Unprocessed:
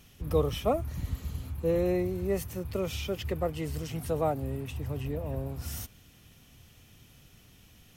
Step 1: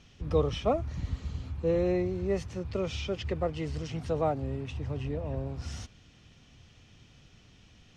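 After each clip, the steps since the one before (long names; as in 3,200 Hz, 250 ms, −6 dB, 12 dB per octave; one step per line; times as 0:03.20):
low-pass filter 6,200 Hz 24 dB per octave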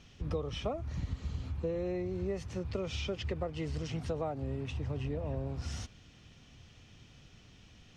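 downward compressor 10 to 1, threshold −31 dBFS, peak gain reduction 12 dB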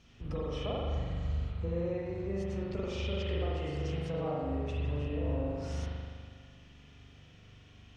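convolution reverb RT60 1.9 s, pre-delay 41 ms, DRR −6 dB
level −5.5 dB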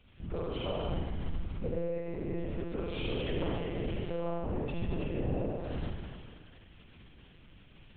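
one-pitch LPC vocoder at 8 kHz 170 Hz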